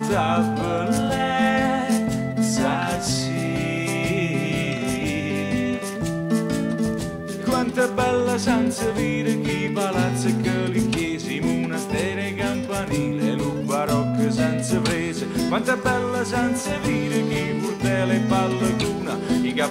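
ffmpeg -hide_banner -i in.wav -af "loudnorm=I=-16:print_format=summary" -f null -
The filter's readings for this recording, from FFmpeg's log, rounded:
Input Integrated:    -22.6 LUFS
Input True Peak:      -9.3 dBTP
Input LRA:             2.0 LU
Input Threshold:     -32.6 LUFS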